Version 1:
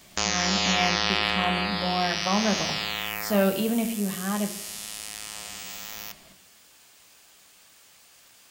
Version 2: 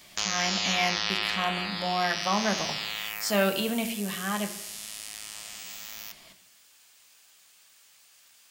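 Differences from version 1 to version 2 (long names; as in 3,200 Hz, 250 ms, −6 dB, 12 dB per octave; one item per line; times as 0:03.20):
background −8.0 dB
master: add tilt shelving filter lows −5.5 dB, about 850 Hz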